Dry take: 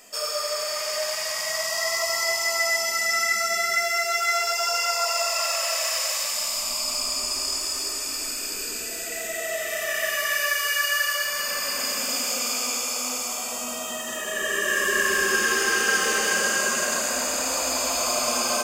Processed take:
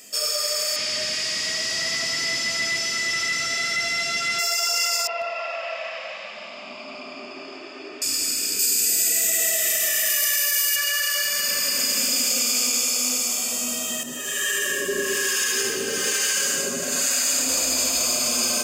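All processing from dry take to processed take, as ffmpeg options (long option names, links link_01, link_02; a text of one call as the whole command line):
ffmpeg -i in.wav -filter_complex "[0:a]asettb=1/sr,asplit=3[link_01][link_02][link_03];[link_01]atrim=end=0.764[link_04];[link_02]atrim=start=0.76:end=4.39,asetpts=PTS-STARTPTS,afade=type=in:duration=0.004:curve=qsin,afade=type=out:start_time=3.626:duration=0.004:curve=qsin,highshelf=frequency=2400:gain=11.5,asoftclip=type=hard:threshold=-22dB,highpass=120,lowpass=3900[link_05];[link_03]atrim=start=4.386[link_06];[link_04][link_05]acrossfade=duration=0.004:curve1=hsin:curve2=qsin[link_07];[link_07][link_06]acrossfade=duration=0.004:curve1=qsin:curve2=hsin,asettb=1/sr,asplit=3[link_08][link_09][link_10];[link_08]atrim=end=5.074[link_11];[link_09]atrim=start=5.07:end=8.02,asetpts=PTS-STARTPTS,afade=type=in:duration=0.004:curve=qsin,afade=type=out:start_time=2.946:duration=0.004:curve=qsin,highpass=frequency=160:width=0.5412,highpass=frequency=160:width=1.3066,equalizer=frequency=370:width_type=q:width=4:gain=4,equalizer=frequency=740:width_type=q:width=4:gain=8,equalizer=frequency=1900:width_type=q:width=4:gain=-4,lowpass=frequency=2600:width=0.5412,lowpass=frequency=2600:width=1.3066,asoftclip=type=hard:threshold=-15dB[link_12];[link_10]atrim=start=8.016[link_13];[link_11][link_12]acrossfade=duration=0.004:curve1=hsin:curve2=qsin[link_14];[link_14][link_13]acrossfade=duration=0.004:curve1=qsin:curve2=hsin,asettb=1/sr,asplit=3[link_15][link_16][link_17];[link_15]atrim=end=8.594[link_18];[link_16]atrim=start=8.59:end=10.76,asetpts=PTS-STARTPTS,afade=type=in:duration=0.004:curve=qsin,afade=type=out:start_time=2.166:duration=0.004:curve=qsin,highpass=57,highshelf=frequency=4700:gain=11.5[link_19];[link_17]atrim=start=10.756[link_20];[link_18][link_19]acrossfade=duration=0.004:curve1=hsin:curve2=qsin[link_21];[link_21][link_20]acrossfade=duration=0.004:curve1=qsin:curve2=hsin,asettb=1/sr,asplit=3[link_22][link_23][link_24];[link_22]atrim=end=14.034[link_25];[link_23]atrim=start=14.03:end=17.49,asetpts=PTS-STARTPTS,afade=type=in:duration=0.004:curve=qsin,afade=type=out:start_time=3.456:duration=0.004:curve=qsin,aecho=1:1:7.2:0.76,atrim=end_sample=152586,acrossover=split=750[link_26][link_27];[link_26]aeval=exprs='val(0)*(1-0.7/2+0.7/2*cos(2*PI*1.1*n/s))':channel_layout=same[link_28];[link_27]aeval=exprs='val(0)*(1-0.7/2-0.7/2*cos(2*PI*1.1*n/s))':channel_layout=same[link_29];[link_28][link_29]amix=inputs=2:normalize=0[link_30];[link_24]atrim=start=17.486[link_31];[link_25][link_30]acrossfade=duration=0.004:curve1=hsin:curve2=qsin[link_32];[link_32][link_31]acrossfade=duration=0.004:curve1=qsin:curve2=hsin,highpass=64,alimiter=limit=-17dB:level=0:latency=1:release=25,equalizer=frequency=930:width_type=o:width=1.7:gain=-13.5,volume=6.5dB" out.wav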